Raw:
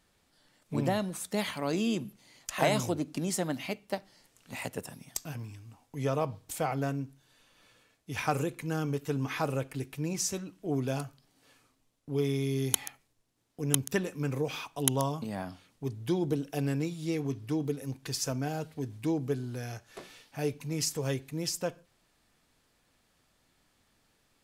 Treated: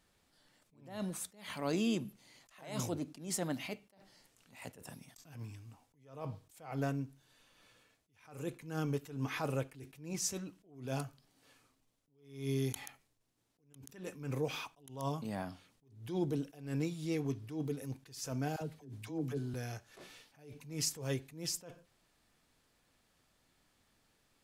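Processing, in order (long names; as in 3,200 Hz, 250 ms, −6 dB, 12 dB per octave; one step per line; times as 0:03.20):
0:18.56–0:19.54: all-pass dispersion lows, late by 54 ms, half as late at 570 Hz
level that may rise only so fast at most 110 dB per second
level −3 dB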